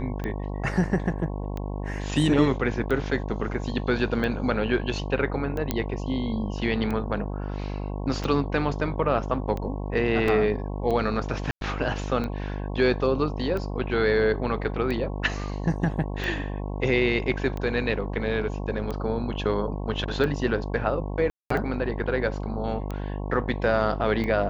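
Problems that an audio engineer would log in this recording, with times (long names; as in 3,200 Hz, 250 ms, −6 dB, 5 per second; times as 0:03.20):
mains buzz 50 Hz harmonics 22 −31 dBFS
scratch tick 45 rpm −19 dBFS
0:05.71: click −9 dBFS
0:10.28: drop-out 2.7 ms
0:11.51–0:11.61: drop-out 102 ms
0:21.30–0:21.50: drop-out 204 ms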